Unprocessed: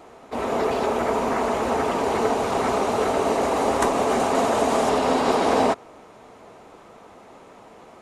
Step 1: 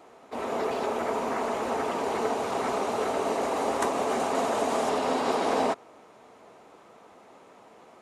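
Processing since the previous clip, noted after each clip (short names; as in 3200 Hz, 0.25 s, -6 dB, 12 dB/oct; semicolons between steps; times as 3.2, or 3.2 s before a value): HPF 180 Hz 6 dB/oct; gain -5.5 dB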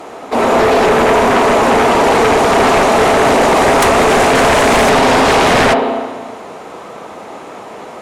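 spring tank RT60 1.4 s, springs 34/56 ms, chirp 25 ms, DRR 6.5 dB; sine folder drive 11 dB, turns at -13 dBFS; gain +6.5 dB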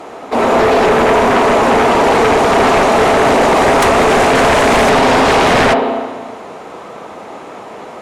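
high shelf 6600 Hz -5 dB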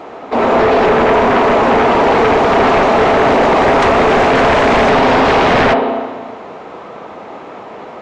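Gaussian blur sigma 1.6 samples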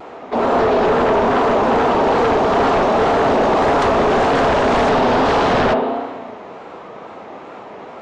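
dynamic EQ 2200 Hz, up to -6 dB, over -33 dBFS, Q 2.1; wow and flutter 75 cents; gain -4 dB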